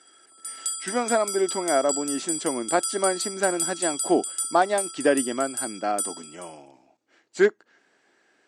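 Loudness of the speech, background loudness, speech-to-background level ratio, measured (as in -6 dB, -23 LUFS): -25.5 LUFS, -29.0 LUFS, 3.5 dB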